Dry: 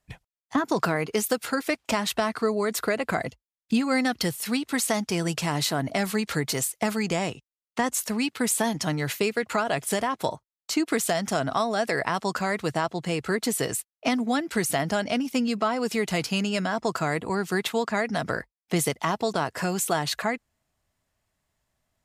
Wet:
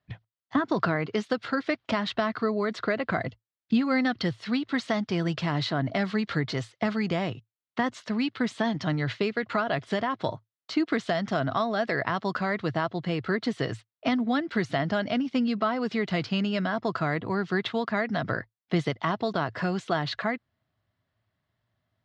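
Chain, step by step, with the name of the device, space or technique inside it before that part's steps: guitar cabinet (speaker cabinet 85–4000 Hz, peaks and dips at 110 Hz +10 dB, 460 Hz -4 dB, 860 Hz -5 dB, 2500 Hz -6 dB)

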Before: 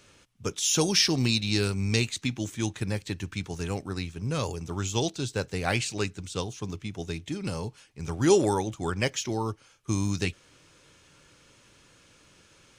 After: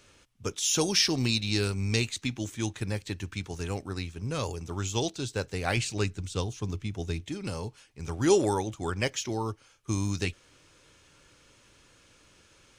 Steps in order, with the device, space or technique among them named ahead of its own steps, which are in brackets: 5.77–7.21 low shelf 190 Hz +7 dB; low shelf boost with a cut just above (low shelf 62 Hz +5 dB; bell 160 Hz -4 dB 0.78 oct); gain -1.5 dB

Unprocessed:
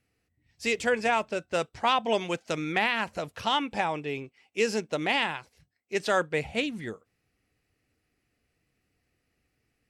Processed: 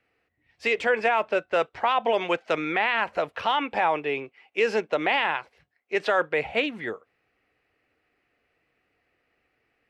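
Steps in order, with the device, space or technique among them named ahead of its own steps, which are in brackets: DJ mixer with the lows and highs turned down (three-band isolator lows -15 dB, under 370 Hz, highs -21 dB, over 3200 Hz; limiter -22 dBFS, peak gain reduction 8.5 dB); gain +9 dB

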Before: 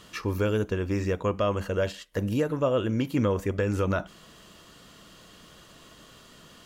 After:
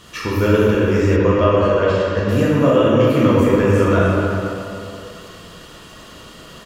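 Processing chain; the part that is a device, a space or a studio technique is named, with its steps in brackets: cave (echo 0.277 s -10.5 dB; reverb RT60 2.8 s, pre-delay 8 ms, DRR -7 dB); 1.16–2.29 air absorption 94 m; gain +4.5 dB

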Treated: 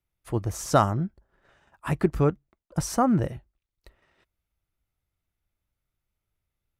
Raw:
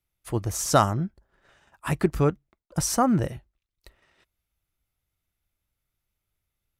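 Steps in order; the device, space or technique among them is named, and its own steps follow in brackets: behind a face mask (high shelf 2600 Hz -7.5 dB)

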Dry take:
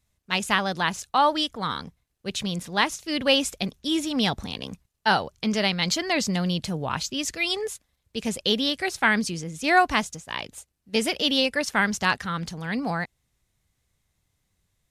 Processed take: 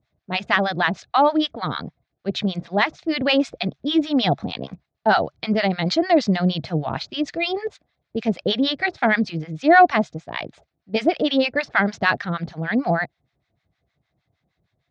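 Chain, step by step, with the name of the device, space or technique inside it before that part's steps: guitar amplifier with harmonic tremolo (harmonic tremolo 6.5 Hz, depth 100%, crossover 860 Hz; soft clip -11.5 dBFS, distortion -23 dB; speaker cabinet 89–4000 Hz, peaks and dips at 140 Hz +4 dB, 320 Hz +4 dB, 680 Hz +9 dB, 1000 Hz -4 dB, 2900 Hz -7 dB); gain +8.5 dB

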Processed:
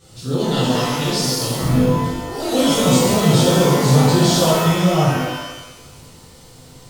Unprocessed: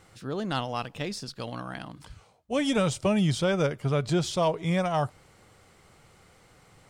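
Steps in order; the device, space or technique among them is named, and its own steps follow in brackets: 1.61–2.04 RIAA curve playback; tilt shelf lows +4 dB, about 690 Hz; over-bright horn tweeter (resonant high shelf 2800 Hz +10 dB, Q 1.5; limiter -18 dBFS, peak gain reduction 6 dB); echoes that change speed 0.257 s, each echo +3 st, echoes 3, each echo -6 dB; shimmer reverb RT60 1.1 s, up +12 st, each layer -8 dB, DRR -11.5 dB; gain -2.5 dB

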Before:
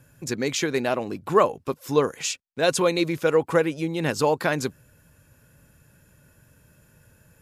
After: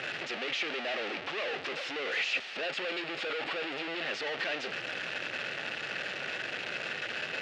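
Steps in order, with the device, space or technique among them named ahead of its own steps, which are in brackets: home computer beeper (infinite clipping; speaker cabinet 510–4200 Hz, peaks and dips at 1000 Hz -10 dB, 1900 Hz +4 dB, 2700 Hz +7 dB); 2.65–4.07 notch 6000 Hz, Q 11; gain -5.5 dB

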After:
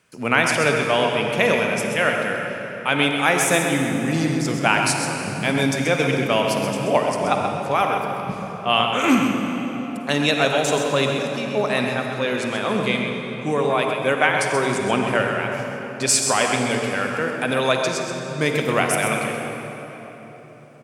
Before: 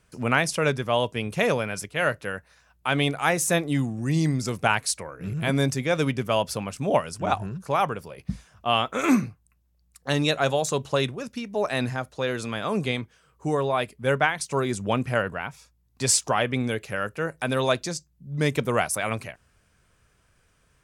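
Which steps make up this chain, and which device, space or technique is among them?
PA in a hall (HPF 170 Hz 12 dB/oct; bell 2400 Hz +4 dB 0.77 oct; echo 0.13 s -8 dB; reverb RT60 4.1 s, pre-delay 40 ms, DRR 3 dB); gain +2.5 dB

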